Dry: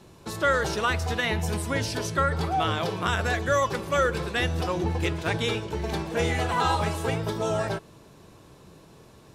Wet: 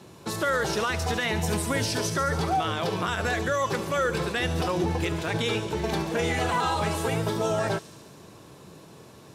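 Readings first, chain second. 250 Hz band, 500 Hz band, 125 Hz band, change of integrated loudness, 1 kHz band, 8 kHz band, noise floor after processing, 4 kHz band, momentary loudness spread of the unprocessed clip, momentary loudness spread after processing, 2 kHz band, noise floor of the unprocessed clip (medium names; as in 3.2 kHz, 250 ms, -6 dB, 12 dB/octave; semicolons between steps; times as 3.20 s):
+1.5 dB, 0.0 dB, -1.0 dB, -0.5 dB, -0.5 dB, +3.0 dB, -49 dBFS, +0.5 dB, 4 LU, 3 LU, -0.5 dB, -52 dBFS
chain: high-pass 97 Hz; peak limiter -20.5 dBFS, peak gain reduction 8.5 dB; feedback echo behind a high-pass 71 ms, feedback 76%, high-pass 5.2 kHz, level -7.5 dB; trim +3.5 dB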